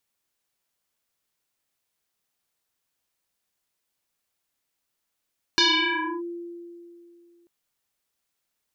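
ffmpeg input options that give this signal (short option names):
-f lavfi -i "aevalsrc='0.178*pow(10,-3*t/2.68)*sin(2*PI*344*t+7.6*clip(1-t/0.64,0,1)*sin(2*PI*1.92*344*t))':d=1.89:s=44100"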